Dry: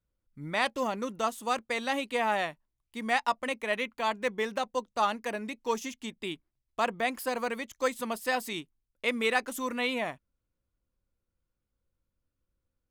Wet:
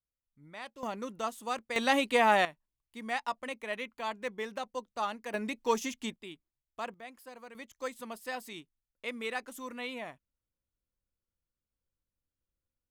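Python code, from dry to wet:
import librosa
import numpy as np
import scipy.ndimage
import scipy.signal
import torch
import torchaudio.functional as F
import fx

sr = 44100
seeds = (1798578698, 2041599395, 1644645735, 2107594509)

y = fx.gain(x, sr, db=fx.steps((0.0, -16.0), (0.83, -5.0), (1.76, 4.0), (2.45, -6.5), (5.34, 1.5), (6.16, -10.0), (6.94, -17.5), (7.55, -9.0)))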